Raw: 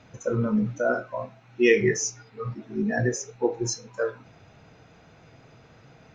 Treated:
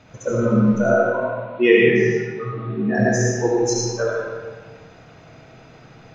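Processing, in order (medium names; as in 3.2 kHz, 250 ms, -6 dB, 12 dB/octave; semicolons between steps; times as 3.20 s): 0.89–2.95 s: elliptic band-pass 110–3600 Hz, stop band 40 dB; algorithmic reverb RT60 1.4 s, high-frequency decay 0.75×, pre-delay 35 ms, DRR -3.5 dB; trim +3 dB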